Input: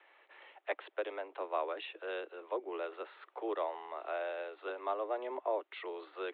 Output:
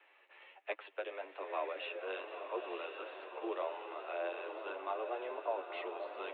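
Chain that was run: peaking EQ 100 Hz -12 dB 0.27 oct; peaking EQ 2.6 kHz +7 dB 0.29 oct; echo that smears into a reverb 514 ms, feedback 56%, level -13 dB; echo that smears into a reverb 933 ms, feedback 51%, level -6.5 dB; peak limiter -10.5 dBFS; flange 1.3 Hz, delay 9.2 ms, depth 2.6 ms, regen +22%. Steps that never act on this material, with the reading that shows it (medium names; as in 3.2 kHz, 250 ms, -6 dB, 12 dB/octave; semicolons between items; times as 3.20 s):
peaking EQ 100 Hz: input has nothing below 250 Hz; peak limiter -10.5 dBFS: peak at its input -20.5 dBFS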